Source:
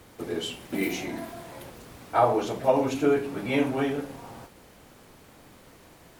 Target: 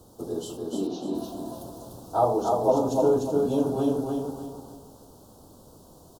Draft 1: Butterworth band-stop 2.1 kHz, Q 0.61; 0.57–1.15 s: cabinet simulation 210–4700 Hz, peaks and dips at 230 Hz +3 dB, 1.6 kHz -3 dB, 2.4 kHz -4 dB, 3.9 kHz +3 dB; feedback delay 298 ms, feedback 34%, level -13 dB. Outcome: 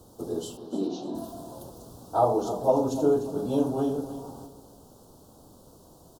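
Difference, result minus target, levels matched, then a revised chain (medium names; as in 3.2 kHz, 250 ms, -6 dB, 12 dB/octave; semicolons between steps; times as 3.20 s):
echo-to-direct -10 dB
Butterworth band-stop 2.1 kHz, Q 0.61; 0.57–1.15 s: cabinet simulation 210–4700 Hz, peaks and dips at 230 Hz +3 dB, 1.6 kHz -3 dB, 2.4 kHz -4 dB, 3.9 kHz +3 dB; feedback delay 298 ms, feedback 34%, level -3 dB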